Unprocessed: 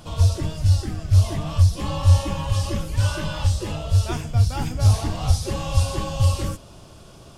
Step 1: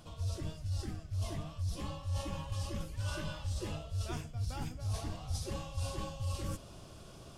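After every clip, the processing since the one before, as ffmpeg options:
-af "bandreject=f=890:w=17,areverse,acompressor=threshold=0.0398:ratio=6,areverse,volume=0.473"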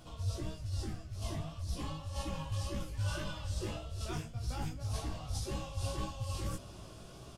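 -filter_complex "[0:a]flanger=delay=15.5:depth=3.3:speed=1.8,asplit=2[s0][s1];[s1]adelay=338.2,volume=0.1,highshelf=f=4000:g=-7.61[s2];[s0][s2]amix=inputs=2:normalize=0,volume=1.58"

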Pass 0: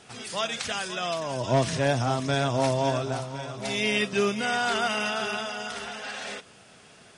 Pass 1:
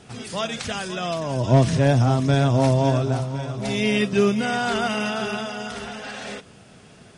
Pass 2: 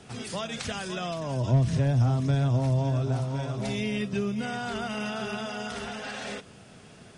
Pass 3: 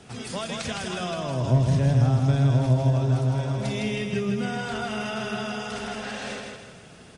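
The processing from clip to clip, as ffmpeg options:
-af "lowshelf=f=380:g=12"
-filter_complex "[0:a]acrossover=split=160[s0][s1];[s1]acompressor=threshold=0.0398:ratio=6[s2];[s0][s2]amix=inputs=2:normalize=0,volume=0.794"
-af "aecho=1:1:159|318|477|636|795:0.631|0.271|0.117|0.0502|0.0216,volume=1.12"

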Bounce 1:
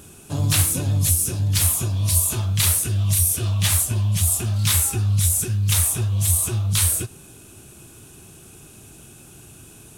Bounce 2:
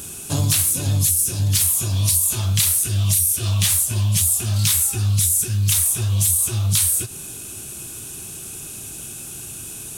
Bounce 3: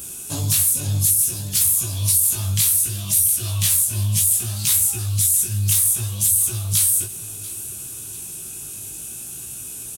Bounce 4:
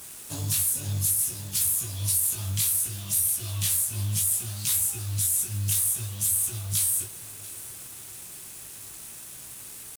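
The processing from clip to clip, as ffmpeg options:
-filter_complex "[0:a]highshelf=f=2900:g=11,asplit=2[s0][s1];[s1]alimiter=limit=0.422:level=0:latency=1:release=227,volume=1.12[s2];[s0][s2]amix=inputs=2:normalize=0,acompressor=threshold=0.224:ratio=6,volume=0.75"
-af "crystalizer=i=1:c=0,flanger=delay=15.5:depth=4.7:speed=0.63,aecho=1:1:690|1380|2070|2760:0.126|0.0541|0.0233|0.01,volume=0.794"
-af "acrusher=bits=7:mode=log:mix=0:aa=0.000001,aeval=exprs='sgn(val(0))*max(abs(val(0))-0.00631,0)':c=same,acrusher=bits=5:mix=0:aa=0.000001,volume=0.447"

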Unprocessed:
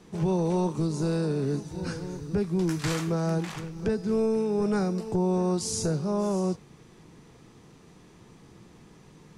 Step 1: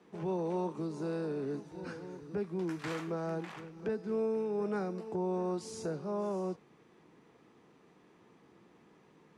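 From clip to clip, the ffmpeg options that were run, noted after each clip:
-filter_complex "[0:a]highpass=42,acrossover=split=210 3100:gain=0.178 1 0.251[s0][s1][s2];[s0][s1][s2]amix=inputs=3:normalize=0,volume=0.501"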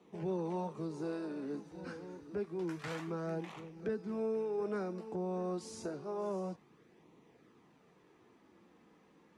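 -af "flanger=delay=0.3:depth=3.6:regen=-49:speed=0.28:shape=sinusoidal,volume=1.19"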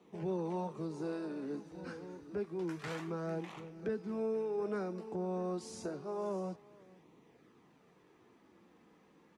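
-af "aecho=1:1:468:0.0708"

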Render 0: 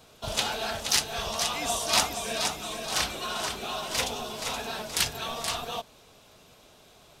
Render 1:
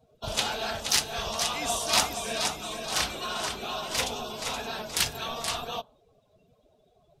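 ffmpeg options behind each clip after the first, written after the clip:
-af "afftdn=nr=23:nf=-49"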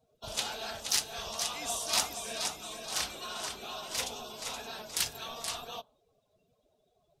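-af "bass=f=250:g=-3,treble=f=4000:g=5,volume=0.398"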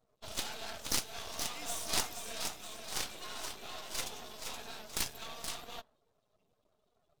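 -af "aeval=exprs='max(val(0),0)':c=same"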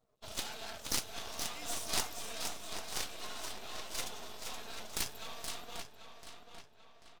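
-filter_complex "[0:a]asplit=2[s0][s1];[s1]adelay=789,lowpass=f=4800:p=1,volume=0.398,asplit=2[s2][s3];[s3]adelay=789,lowpass=f=4800:p=1,volume=0.47,asplit=2[s4][s5];[s5]adelay=789,lowpass=f=4800:p=1,volume=0.47,asplit=2[s6][s7];[s7]adelay=789,lowpass=f=4800:p=1,volume=0.47,asplit=2[s8][s9];[s9]adelay=789,lowpass=f=4800:p=1,volume=0.47[s10];[s0][s2][s4][s6][s8][s10]amix=inputs=6:normalize=0,volume=0.841"

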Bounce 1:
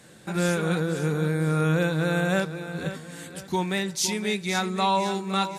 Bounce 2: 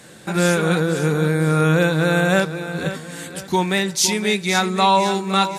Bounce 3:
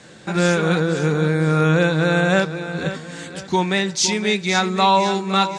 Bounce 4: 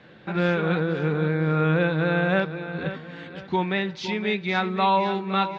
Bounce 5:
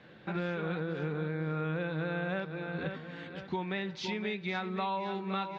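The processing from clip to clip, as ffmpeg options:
-af "lowshelf=f=220:g=-3.5,volume=2.51"
-af "lowpass=f=7300:w=0.5412,lowpass=f=7300:w=1.3066"
-af "lowpass=f=3400:w=0.5412,lowpass=f=3400:w=1.3066,volume=0.562"
-af "acompressor=threshold=0.0501:ratio=6,volume=0.562"

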